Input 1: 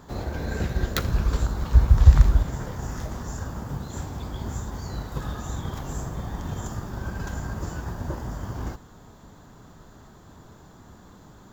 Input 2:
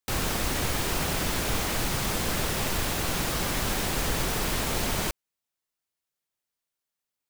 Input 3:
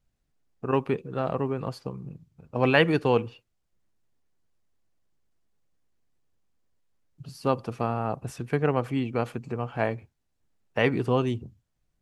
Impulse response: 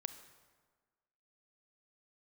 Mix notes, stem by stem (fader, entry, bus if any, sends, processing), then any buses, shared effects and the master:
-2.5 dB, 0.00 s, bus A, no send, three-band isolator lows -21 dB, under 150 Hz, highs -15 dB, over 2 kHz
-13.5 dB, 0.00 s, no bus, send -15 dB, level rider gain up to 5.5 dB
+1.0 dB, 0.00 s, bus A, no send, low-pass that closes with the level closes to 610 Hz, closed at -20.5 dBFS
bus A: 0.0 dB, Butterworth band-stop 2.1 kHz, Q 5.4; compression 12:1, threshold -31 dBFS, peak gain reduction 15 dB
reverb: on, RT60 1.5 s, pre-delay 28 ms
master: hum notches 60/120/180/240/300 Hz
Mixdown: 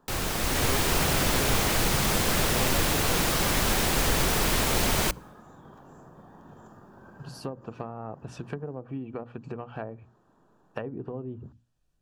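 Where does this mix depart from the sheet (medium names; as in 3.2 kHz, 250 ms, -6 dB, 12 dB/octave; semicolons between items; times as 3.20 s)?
stem 1 -2.5 dB -> -12.0 dB; stem 2 -13.5 dB -> -3.0 dB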